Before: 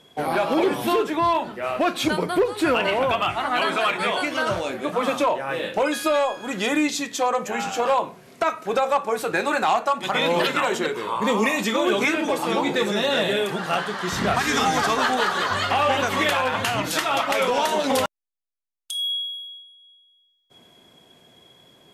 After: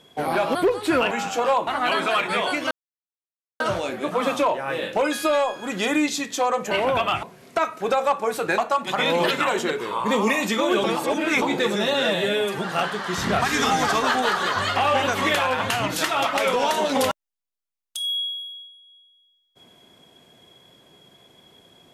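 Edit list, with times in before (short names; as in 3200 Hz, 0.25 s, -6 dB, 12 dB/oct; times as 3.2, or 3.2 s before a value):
0.55–2.29 cut
2.85–3.37 swap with 7.52–8.08
4.41 insert silence 0.89 s
9.43–9.74 cut
12–12.58 reverse
13.1–13.53 stretch 1.5×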